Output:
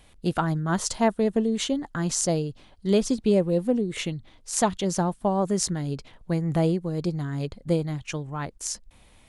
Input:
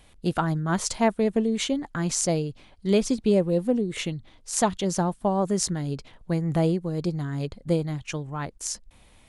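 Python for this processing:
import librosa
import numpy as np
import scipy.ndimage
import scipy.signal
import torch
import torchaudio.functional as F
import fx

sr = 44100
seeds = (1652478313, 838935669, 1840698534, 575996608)

y = fx.peak_eq(x, sr, hz=2300.0, db=-6.5, octaves=0.23, at=(0.69, 3.2))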